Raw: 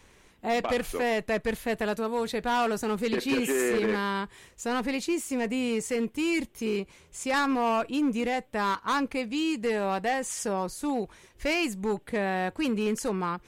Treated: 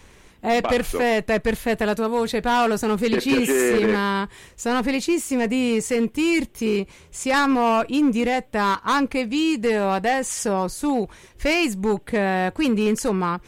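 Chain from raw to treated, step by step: low shelf 160 Hz +4 dB; gain +6.5 dB

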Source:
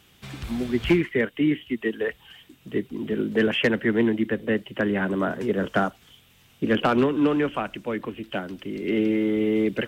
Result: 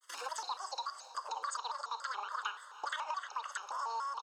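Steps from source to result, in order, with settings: HPF 340 Hz 24 dB/oct; expander -52 dBFS; LPF 3300 Hz 12 dB/oct; bell 450 Hz +7 dB 1.1 oct; comb 1.6 ms, depth 87%; compressor 6:1, threshold -36 dBFS, peak gain reduction 23.5 dB; rotary speaker horn 8 Hz, later 0.85 Hz, at 3.53; diffused feedback echo 0.79 s, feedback 58%, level -15.5 dB; reverb RT60 1.6 s, pre-delay 61 ms, DRR 11 dB; speed mistake 33 rpm record played at 78 rpm; shaped vibrato square 3.5 Hz, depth 160 cents

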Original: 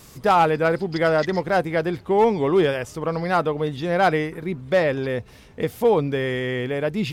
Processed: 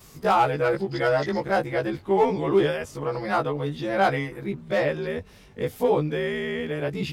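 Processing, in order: short-time reversal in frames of 41 ms

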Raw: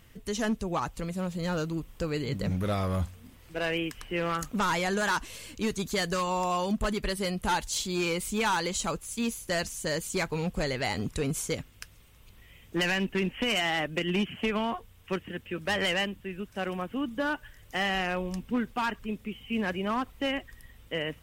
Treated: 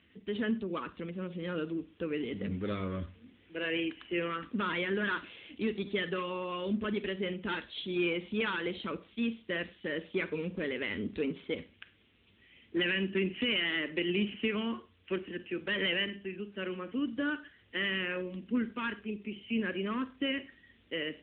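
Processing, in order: fixed phaser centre 320 Hz, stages 4; Schroeder reverb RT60 0.34 s, combs from 31 ms, DRR 12 dB; AMR-NB 10.2 kbps 8000 Hz

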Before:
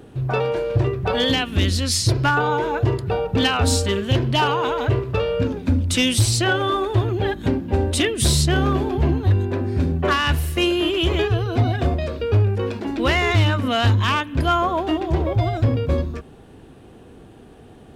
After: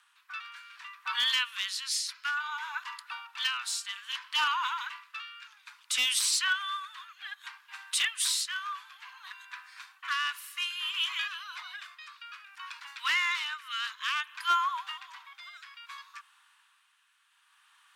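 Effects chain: steep high-pass 1000 Hz 72 dB/oct; rotary speaker horn 0.6 Hz; hard clip -16 dBFS, distortion -23 dB; gain -3.5 dB

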